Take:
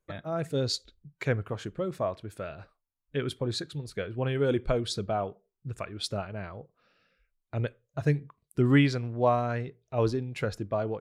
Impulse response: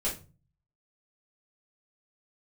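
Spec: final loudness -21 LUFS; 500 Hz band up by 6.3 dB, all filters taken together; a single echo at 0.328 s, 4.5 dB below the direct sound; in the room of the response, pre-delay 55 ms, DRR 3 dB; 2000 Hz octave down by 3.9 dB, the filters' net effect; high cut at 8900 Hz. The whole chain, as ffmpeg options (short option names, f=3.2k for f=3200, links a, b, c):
-filter_complex "[0:a]lowpass=8.9k,equalizer=f=500:t=o:g=8,equalizer=f=2k:t=o:g=-5.5,aecho=1:1:328:0.596,asplit=2[a][b];[1:a]atrim=start_sample=2205,adelay=55[c];[b][c]afir=irnorm=-1:irlink=0,volume=-9dB[d];[a][d]amix=inputs=2:normalize=0,volume=2.5dB"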